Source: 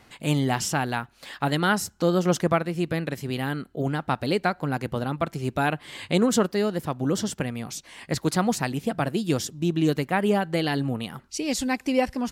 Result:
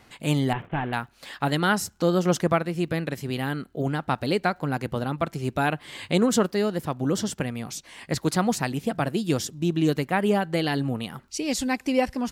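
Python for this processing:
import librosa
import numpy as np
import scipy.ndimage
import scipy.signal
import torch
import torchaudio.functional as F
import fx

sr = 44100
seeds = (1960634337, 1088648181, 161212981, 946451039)

y = fx.cvsd(x, sr, bps=16000, at=(0.53, 0.93))
y = fx.dmg_crackle(y, sr, seeds[0], per_s=53.0, level_db=-54.0)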